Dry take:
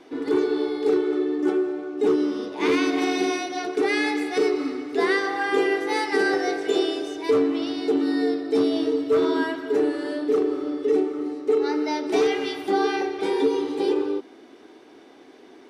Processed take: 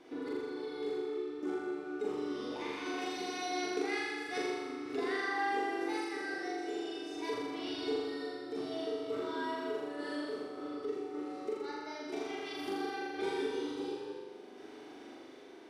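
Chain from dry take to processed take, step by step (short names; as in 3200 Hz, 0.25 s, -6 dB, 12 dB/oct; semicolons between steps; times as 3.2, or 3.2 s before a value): compressor 4:1, threshold -30 dBFS, peak gain reduction 12 dB; random-step tremolo; flutter echo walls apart 7.1 m, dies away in 1.4 s; gain -5 dB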